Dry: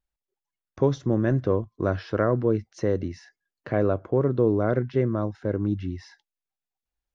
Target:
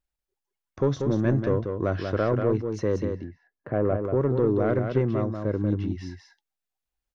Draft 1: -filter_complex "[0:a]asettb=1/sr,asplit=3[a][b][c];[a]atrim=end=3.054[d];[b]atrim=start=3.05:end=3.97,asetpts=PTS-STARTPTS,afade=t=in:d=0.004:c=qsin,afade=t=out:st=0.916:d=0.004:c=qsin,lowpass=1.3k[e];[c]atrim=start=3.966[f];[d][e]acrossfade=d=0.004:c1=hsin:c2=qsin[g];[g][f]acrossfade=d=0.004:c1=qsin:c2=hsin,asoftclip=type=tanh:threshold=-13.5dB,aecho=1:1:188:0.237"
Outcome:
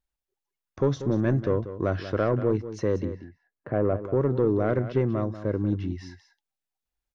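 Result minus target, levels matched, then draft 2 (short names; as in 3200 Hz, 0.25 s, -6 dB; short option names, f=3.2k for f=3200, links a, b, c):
echo-to-direct -6.5 dB
-filter_complex "[0:a]asettb=1/sr,asplit=3[a][b][c];[a]atrim=end=3.054[d];[b]atrim=start=3.05:end=3.97,asetpts=PTS-STARTPTS,afade=t=in:d=0.004:c=qsin,afade=t=out:st=0.916:d=0.004:c=qsin,lowpass=1.3k[e];[c]atrim=start=3.966[f];[d][e]acrossfade=d=0.004:c1=hsin:c2=qsin[g];[g][f]acrossfade=d=0.004:c1=qsin:c2=hsin,asoftclip=type=tanh:threshold=-13.5dB,aecho=1:1:188:0.501"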